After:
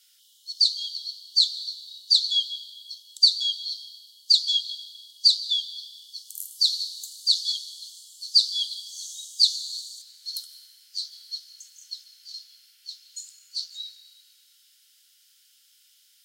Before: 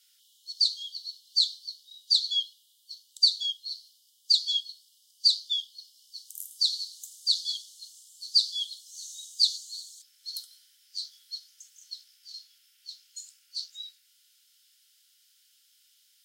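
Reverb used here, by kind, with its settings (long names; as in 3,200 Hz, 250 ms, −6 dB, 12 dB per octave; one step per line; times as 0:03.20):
dense smooth reverb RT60 3.7 s, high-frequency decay 0.45×, pre-delay 120 ms, DRR 11.5 dB
level +4 dB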